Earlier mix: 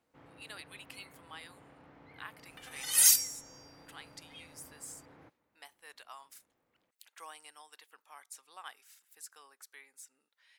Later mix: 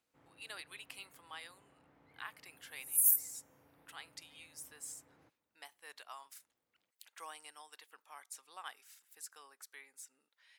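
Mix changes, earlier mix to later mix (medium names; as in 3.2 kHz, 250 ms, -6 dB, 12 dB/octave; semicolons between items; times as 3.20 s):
first sound -10.0 dB; second sound: add inverse Chebyshev high-pass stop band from 2.2 kHz, stop band 80 dB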